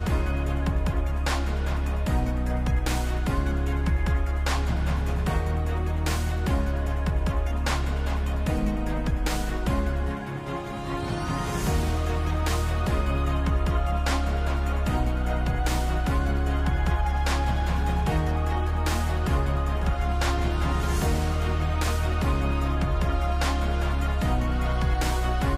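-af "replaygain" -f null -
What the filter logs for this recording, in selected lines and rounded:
track_gain = +11.9 dB
track_peak = 0.159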